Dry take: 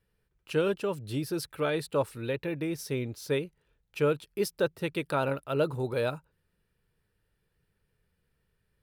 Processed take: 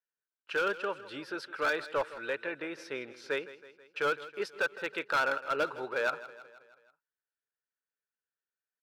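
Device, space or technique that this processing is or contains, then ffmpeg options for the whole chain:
megaphone: -af "highpass=530,lowpass=3.7k,equalizer=f=1.5k:t=o:w=0.45:g=11.5,asoftclip=type=hard:threshold=-24dB,agate=range=-22dB:threshold=-58dB:ratio=16:detection=peak,aecho=1:1:161|322|483|644|805:0.15|0.0853|0.0486|0.0277|0.0158"

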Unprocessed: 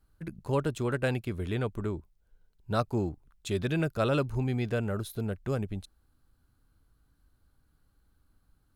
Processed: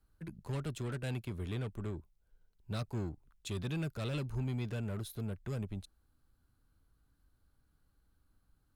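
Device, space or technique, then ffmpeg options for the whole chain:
one-band saturation: -filter_complex "[0:a]acrossover=split=200|2500[a][b][c];[b]asoftclip=type=tanh:threshold=-37dB[d];[a][d][c]amix=inputs=3:normalize=0,volume=-4.5dB"

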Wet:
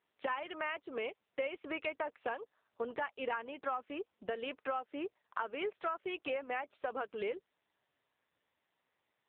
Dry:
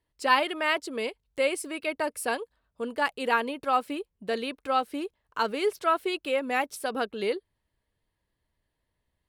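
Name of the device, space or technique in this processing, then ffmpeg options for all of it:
voicemail: -filter_complex "[0:a]asettb=1/sr,asplit=3[a][b][c];[a]atrim=end=2.164[d];[b]atrim=start=2.16:end=3.88,asetpts=PTS-STARTPTS,afade=t=in:d=0.004:c=qsin,afade=t=out:st=1.716:d=0.004:c=qsin,asubboost=boost=5.5:cutoff=210[e];[c]atrim=start=3.876[f];[d][e]acrossfade=d=0.004:c1=hsin:c2=qsin[g];[g][f]acrossfade=d=0.004:c1=qsin:c2=hsin,highpass=430,lowpass=2.6k,acompressor=threshold=-37dB:ratio=12,volume=4dB" -ar 8000 -c:a libopencore_amrnb -b:a 6700

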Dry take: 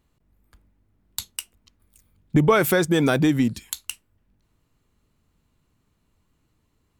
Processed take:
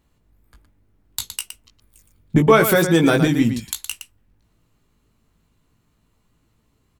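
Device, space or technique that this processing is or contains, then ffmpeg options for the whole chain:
slapback doubling: -filter_complex "[0:a]asplit=3[a][b][c];[b]adelay=18,volume=-5dB[d];[c]adelay=116,volume=-8.5dB[e];[a][d][e]amix=inputs=3:normalize=0,volume=2.5dB"

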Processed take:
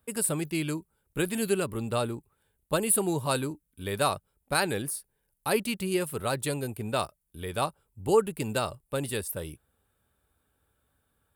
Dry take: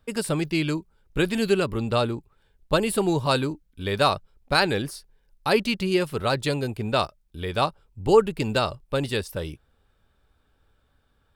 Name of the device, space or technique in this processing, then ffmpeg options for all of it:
budget condenser microphone: -af "highpass=62,highshelf=f=7.3k:t=q:w=1.5:g=12,volume=-5.5dB"

